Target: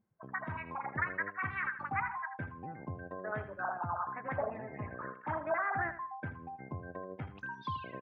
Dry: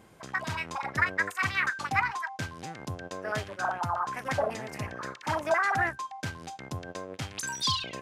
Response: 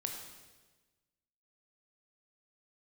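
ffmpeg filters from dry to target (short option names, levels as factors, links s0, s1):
-filter_complex "[0:a]afftdn=nr=28:nf=-40,lowpass=f=2000:w=0.5412,lowpass=f=2000:w=1.3066,asplit=2[s0][s1];[s1]acompressor=threshold=0.0112:ratio=6,volume=1.12[s2];[s0][s2]amix=inputs=2:normalize=0,aecho=1:1:80|160|240:0.266|0.0745|0.0209,volume=0.376"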